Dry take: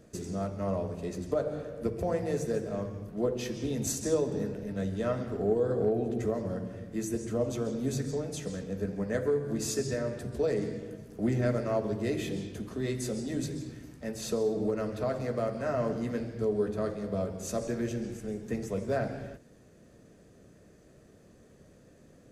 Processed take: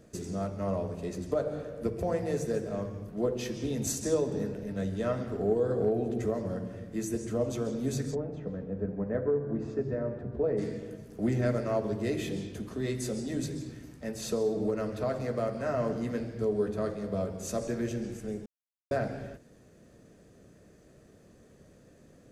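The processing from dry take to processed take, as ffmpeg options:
ffmpeg -i in.wav -filter_complex "[0:a]asplit=3[link_01][link_02][link_03];[link_01]afade=type=out:start_time=8.14:duration=0.02[link_04];[link_02]lowpass=1200,afade=type=in:start_time=8.14:duration=0.02,afade=type=out:start_time=10.57:duration=0.02[link_05];[link_03]afade=type=in:start_time=10.57:duration=0.02[link_06];[link_04][link_05][link_06]amix=inputs=3:normalize=0,asplit=3[link_07][link_08][link_09];[link_07]atrim=end=18.46,asetpts=PTS-STARTPTS,afade=type=out:start_time=18.456:duration=0.004:curve=hsin[link_10];[link_08]atrim=start=18.46:end=18.91,asetpts=PTS-STARTPTS,volume=0[link_11];[link_09]atrim=start=18.91,asetpts=PTS-STARTPTS,afade=type=in:duration=0.004:curve=hsin[link_12];[link_10][link_11][link_12]concat=n=3:v=0:a=1" out.wav

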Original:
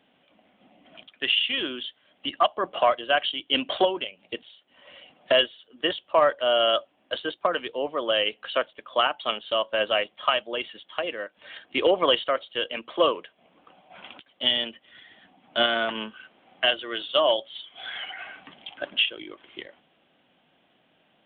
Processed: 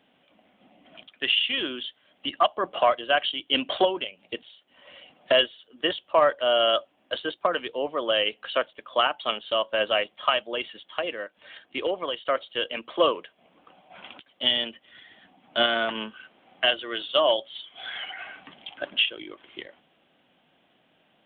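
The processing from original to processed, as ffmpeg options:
ffmpeg -i in.wav -filter_complex "[0:a]asplit=2[link_01][link_02];[link_01]atrim=end=12.25,asetpts=PTS-STARTPTS,afade=type=out:start_time=11.07:duration=1.18:silence=0.223872[link_03];[link_02]atrim=start=12.25,asetpts=PTS-STARTPTS,afade=type=in:duration=0.004:curve=hsin:silence=0.223872[link_04];[link_03][link_04]concat=n=2:v=0:a=1" out.wav

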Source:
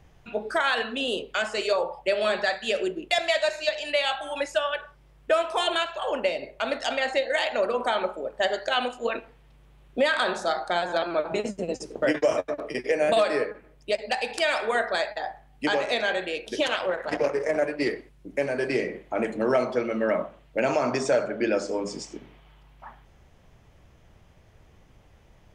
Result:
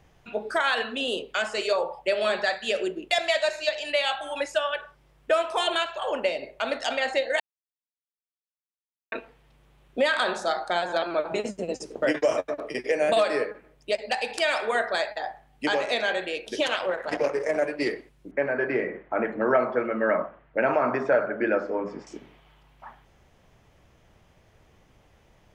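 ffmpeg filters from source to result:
ffmpeg -i in.wav -filter_complex "[0:a]asettb=1/sr,asplit=3[link_01][link_02][link_03];[link_01]atrim=end=18.314[link_04];[link_02]atrim=start=18.31:end=22.07,asetpts=PTS-STARTPTS,afade=type=in:duration=0.004:curve=qsin,afade=type=out:start_time=3.756:duration=0.004:curve=qsin,lowpass=frequency=1600:width_type=q:width=1.9[link_05];[link_03]atrim=start=22.066[link_06];[link_04][link_05]acrossfade=duration=0.004:curve1=hsin:curve2=qsin[link_07];[link_07][link_06]acrossfade=duration=0.004:curve1=qsin:curve2=hsin,asplit=3[link_08][link_09][link_10];[link_08]atrim=end=7.4,asetpts=PTS-STARTPTS,afade=type=out:start_time=7.396:duration=0.004:curve=hsin[link_11];[link_09]atrim=start=7.4:end=9.12,asetpts=PTS-STARTPTS,volume=0[link_12];[link_10]atrim=start=9.12,asetpts=PTS-STARTPTS,afade=type=in:duration=0.004:curve=hsin[link_13];[link_11][link_12][link_13]concat=n=3:v=0:a=1,lowshelf=frequency=150:gain=-6" out.wav

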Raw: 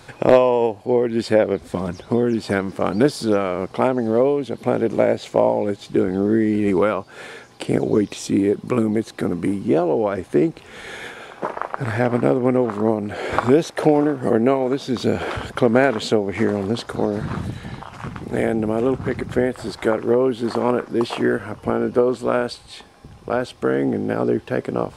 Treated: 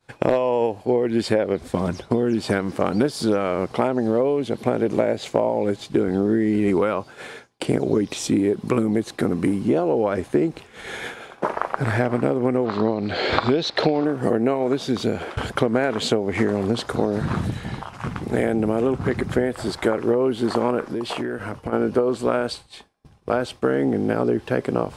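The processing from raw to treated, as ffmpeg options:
ffmpeg -i in.wav -filter_complex "[0:a]asettb=1/sr,asplit=3[link_01][link_02][link_03];[link_01]atrim=end=12.664[link_04];[link_02]atrim=start=12.66:end=14.05,asetpts=PTS-STARTPTS,afade=type=in:duration=0.004:curve=qsin,afade=type=out:start_time=1.386:duration=0.004:curve=qsin,lowpass=frequency=4200:width_type=q:width=4.7[link_05];[link_03]atrim=start=14.046[link_06];[link_04][link_05]acrossfade=duration=0.004:curve1=hsin:curve2=qsin[link_07];[link_07][link_06]acrossfade=duration=0.004:curve1=qsin:curve2=hsin,asplit=3[link_08][link_09][link_10];[link_08]afade=type=out:start_time=20.87:duration=0.02[link_11];[link_09]acompressor=threshold=-25dB:ratio=10:attack=3.2:release=140:knee=1:detection=peak,afade=type=in:start_time=20.87:duration=0.02,afade=type=out:start_time=21.72:duration=0.02[link_12];[link_10]afade=type=in:start_time=21.72:duration=0.02[link_13];[link_11][link_12][link_13]amix=inputs=3:normalize=0,asplit=2[link_14][link_15];[link_14]atrim=end=15.37,asetpts=PTS-STARTPTS,afade=type=out:start_time=14.8:duration=0.57:silence=0.237137[link_16];[link_15]atrim=start=15.37,asetpts=PTS-STARTPTS,afade=type=in:duration=0.004:curve=hsin:silence=0.237137[link_17];[link_16][link_17]concat=n=2:v=0:a=1,agate=range=-33dB:threshold=-32dB:ratio=3:detection=peak,acompressor=threshold=-18dB:ratio=6,volume=2.5dB" out.wav

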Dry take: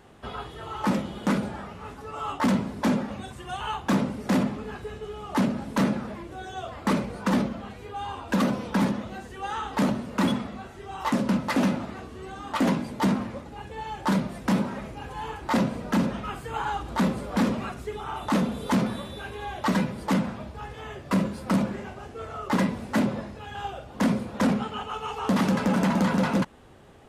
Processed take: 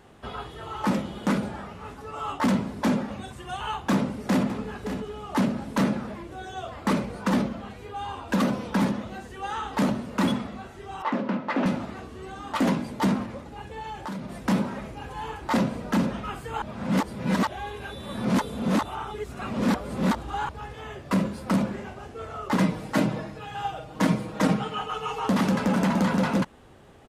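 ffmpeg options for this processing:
ffmpeg -i in.wav -filter_complex "[0:a]asplit=2[link_01][link_02];[link_02]afade=type=in:start_time=3.92:duration=0.01,afade=type=out:start_time=4.45:duration=0.01,aecho=0:1:570|1140|1710:0.316228|0.0632456|0.0126491[link_03];[link_01][link_03]amix=inputs=2:normalize=0,asettb=1/sr,asplit=3[link_04][link_05][link_06];[link_04]atrim=end=11.024[link_07];[link_05]atrim=start=11.02:end=11.66,asetpts=PTS-STARTPTS,afade=type=in:duration=0.004:curve=qsin,afade=type=out:start_time=0.636:duration=0.004:curve=qsin,highpass=240,lowpass=2600[link_08];[link_06]atrim=start=11.656[link_09];[link_07][link_08]acrossfade=duration=0.004:curve1=hsin:curve2=qsin[link_10];[link_10][link_09]acrossfade=duration=0.004:curve1=qsin:curve2=hsin,asettb=1/sr,asplit=3[link_11][link_12][link_13];[link_11]atrim=end=13.244[link_14];[link_12]atrim=start=13.24:end=14.39,asetpts=PTS-STARTPTS,afade=type=in:duration=0.004:curve=qsin,afade=type=out:start_time=1.146:duration=0.004:curve=qsin,acompressor=threshold=-31dB:ratio=6:attack=3.2:release=140:knee=1:detection=peak[link_15];[link_13]atrim=start=14.386[link_16];[link_14][link_15]acrossfade=duration=0.004:curve1=hsin:curve2=qsin[link_17];[link_17][link_16]acrossfade=duration=0.004:curve1=qsin:curve2=hsin,asettb=1/sr,asplit=3[link_18][link_19][link_20];[link_18]atrim=end=22.604[link_21];[link_19]atrim=start=22.6:end=25.27,asetpts=PTS-STARTPTS,afade=type=in:duration=0.004:curve=qsin,afade=type=out:start_time=2.666:duration=0.004:curve=qsin,aecho=1:1:6.4:0.79,atrim=end_sample=117747[link_22];[link_20]atrim=start=25.266[link_23];[link_21][link_22]acrossfade=duration=0.004:curve1=hsin:curve2=qsin[link_24];[link_24][link_23]acrossfade=duration=0.004:curve1=qsin:curve2=hsin,asplit=3[link_25][link_26][link_27];[link_25]atrim=end=16.622[link_28];[link_26]atrim=start=16.618:end=20.492,asetpts=PTS-STARTPTS,areverse[link_29];[link_27]atrim=start=20.488[link_30];[link_28][link_29]acrossfade=duration=0.004:curve1=hsin:curve2=hsin[link_31];[link_31][link_30]acrossfade=duration=0.004:curve1=hsin:curve2=hsin" out.wav

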